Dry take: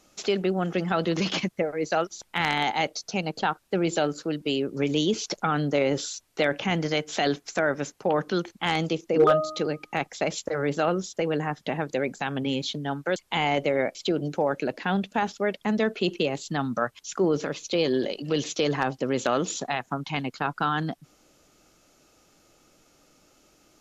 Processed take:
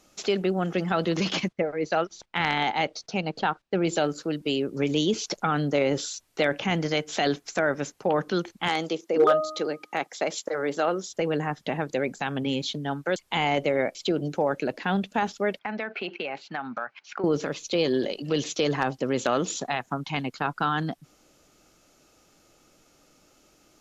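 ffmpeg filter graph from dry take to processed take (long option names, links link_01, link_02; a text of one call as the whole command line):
ffmpeg -i in.wav -filter_complex "[0:a]asettb=1/sr,asplit=3[link_01][link_02][link_03];[link_01]atrim=end=1.484[link_04];[link_02]atrim=start=1.48:end=3.85,asetpts=PTS-STARTPTS,afade=type=in:duration=0.004:curve=qsin,afade=type=out:start_time=2.366:duration=0.004:curve=qsin,lowpass=4700,agate=range=-13dB:threshold=-56dB:ratio=16:release=100:detection=peak[link_05];[link_03]atrim=start=3.846[link_06];[link_04][link_05]acrossfade=duration=0.004:curve1=hsin:curve2=qsin[link_07];[link_07][link_06]acrossfade=duration=0.004:curve1=qsin:curve2=hsin,asettb=1/sr,asplit=3[link_08][link_09][link_10];[link_08]atrim=end=8.684[link_11];[link_09]atrim=start=8.68:end=11.1,asetpts=PTS-STARTPTS,afade=type=in:duration=0.004:curve=qsin,afade=type=out:start_time=2.416:duration=0.004:curve=qsin,highpass=280,equalizer=frequency=2600:width_type=o:width=0.27:gain=-4[link_12];[link_10]atrim=start=11.096[link_13];[link_11][link_12]acrossfade=duration=0.004:curve1=hsin:curve2=qsin[link_14];[link_14][link_13]acrossfade=duration=0.004:curve1=qsin:curve2=hsin,asettb=1/sr,asplit=3[link_15][link_16][link_17];[link_15]atrim=end=15.594[link_18];[link_16]atrim=start=15.59:end=17.24,asetpts=PTS-STARTPTS,afade=type=in:duration=0.004:curve=qsin,afade=type=out:start_time=1.646:duration=0.004:curve=qsin,highpass=300,equalizer=frequency=310:width_type=q:width=4:gain=-5,equalizer=frequency=450:width_type=q:width=4:gain=-5,equalizer=frequency=800:width_type=q:width=4:gain=7,equalizer=frequency=1500:width_type=q:width=4:gain=8,equalizer=frequency=2300:width_type=q:width=4:gain=9,equalizer=frequency=3500:width_type=q:width=4:gain=-7,lowpass=frequency=4100:width=0.5412,lowpass=frequency=4100:width=1.3066,acompressor=threshold=-27dB:ratio=6:attack=3.2:release=140:knee=1:detection=peak[link_19];[link_17]atrim=start=17.236[link_20];[link_18][link_19]acrossfade=duration=0.004:curve1=hsin:curve2=qsin[link_21];[link_21][link_20]acrossfade=duration=0.004:curve1=qsin:curve2=hsin" out.wav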